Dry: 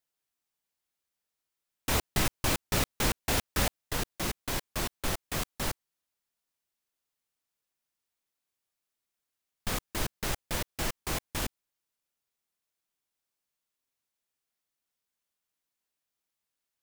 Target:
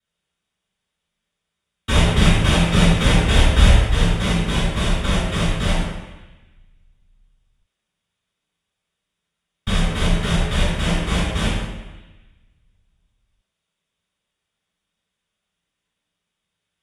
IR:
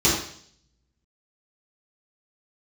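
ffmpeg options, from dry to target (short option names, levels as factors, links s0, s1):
-filter_complex "[0:a]asettb=1/sr,asplit=3[s0][s1][s2];[s0]atrim=end=3.224[s3];[s1]atrim=start=3.22:end=3.94,asetpts=PTS-STARTPTS,afade=t=in:d=0.004:c=qsin,afade=t=out:st=0.716:d=0.004:c=qsin,asubboost=boost=11.5:cutoff=91[s4];[s2]atrim=start=3.936[s5];[s3][s4]acrossfade=d=0.004:c1=hsin:c2=qsin[s6];[s6][s5]acrossfade=d=0.004:c1=qsin:c2=hsin[s7];[1:a]atrim=start_sample=2205,asetrate=22491,aresample=44100[s8];[s7][s8]afir=irnorm=-1:irlink=0,volume=0.266"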